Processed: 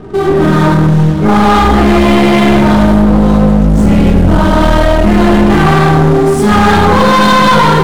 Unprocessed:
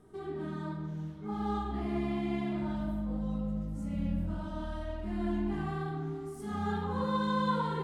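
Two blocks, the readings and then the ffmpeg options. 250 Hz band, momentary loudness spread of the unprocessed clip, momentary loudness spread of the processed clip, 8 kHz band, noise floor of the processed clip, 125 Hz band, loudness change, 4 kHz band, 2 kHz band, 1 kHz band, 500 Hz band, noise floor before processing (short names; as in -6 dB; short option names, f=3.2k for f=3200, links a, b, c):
+26.0 dB, 8 LU, 2 LU, n/a, -10 dBFS, +27.0 dB, +27.0 dB, +30.5 dB, +30.5 dB, +27.5 dB, +28.0 dB, -42 dBFS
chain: -af "dynaudnorm=f=330:g=3:m=5dB,apsyclip=31dB,adynamicsmooth=sensitivity=7:basefreq=530,aeval=exprs='clip(val(0),-1,0.422)':c=same,volume=-1dB"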